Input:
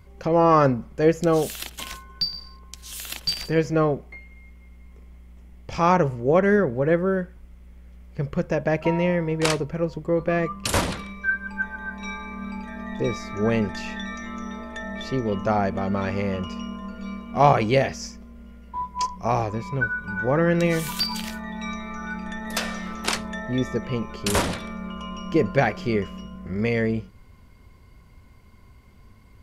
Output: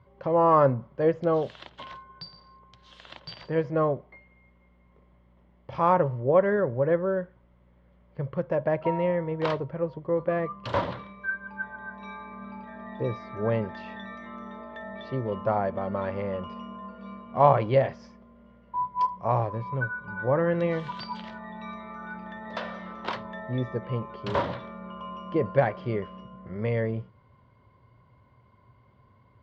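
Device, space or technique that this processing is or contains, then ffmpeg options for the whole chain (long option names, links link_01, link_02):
guitar cabinet: -af "highpass=100,equalizer=frequency=120:width_type=q:width=4:gain=10,equalizer=frequency=210:width_type=q:width=4:gain=-3,equalizer=frequency=570:width_type=q:width=4:gain=8,equalizer=frequency=1000:width_type=q:width=4:gain=8,equalizer=frequency=2500:width_type=q:width=4:gain=-7,lowpass=frequency=3500:width=0.5412,lowpass=frequency=3500:width=1.3066,volume=-7dB"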